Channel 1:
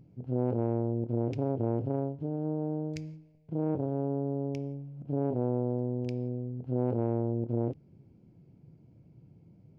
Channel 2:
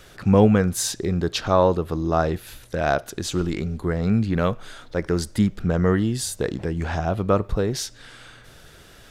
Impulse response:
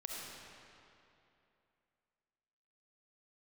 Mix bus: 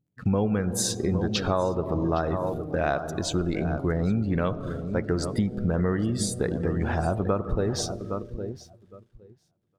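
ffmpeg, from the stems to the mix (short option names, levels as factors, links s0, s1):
-filter_complex "[0:a]volume=0.447,asplit=2[s0][s1];[s1]volume=0.668[s2];[1:a]agate=range=0.0224:threshold=0.00708:ratio=3:detection=peak,aeval=exprs='sgn(val(0))*max(abs(val(0))-0.00668,0)':c=same,volume=0.944,asplit=3[s3][s4][s5];[s4]volume=0.299[s6];[s5]volume=0.282[s7];[2:a]atrim=start_sample=2205[s8];[s6][s8]afir=irnorm=-1:irlink=0[s9];[s2][s7]amix=inputs=2:normalize=0,aecho=0:1:812|1624|2436:1|0.19|0.0361[s10];[s0][s3][s9][s10]amix=inputs=4:normalize=0,afftdn=nr=15:nf=-37,acompressor=threshold=0.0891:ratio=6"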